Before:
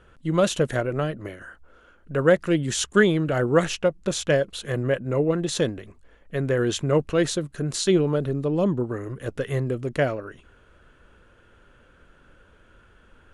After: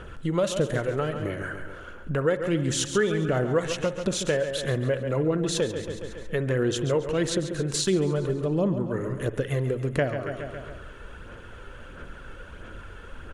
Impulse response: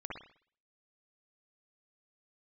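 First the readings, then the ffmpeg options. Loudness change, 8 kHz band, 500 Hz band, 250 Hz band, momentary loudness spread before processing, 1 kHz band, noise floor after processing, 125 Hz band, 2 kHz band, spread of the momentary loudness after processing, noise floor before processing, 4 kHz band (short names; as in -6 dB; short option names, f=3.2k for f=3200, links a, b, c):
-3.0 dB, -1.0 dB, -2.5 dB, -3.0 dB, 10 LU, -3.0 dB, -43 dBFS, -1.0 dB, -3.5 dB, 20 LU, -56 dBFS, -1.5 dB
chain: -filter_complex "[0:a]aphaser=in_gain=1:out_gain=1:delay=2.3:decay=0.37:speed=1.5:type=sinusoidal,aecho=1:1:138|276|414|552|690:0.266|0.125|0.0588|0.0276|0.013,acompressor=threshold=-40dB:ratio=2.5,asplit=2[a][b];[1:a]atrim=start_sample=2205[c];[b][c]afir=irnorm=-1:irlink=0,volume=-12dB[d];[a][d]amix=inputs=2:normalize=0,volume=9dB"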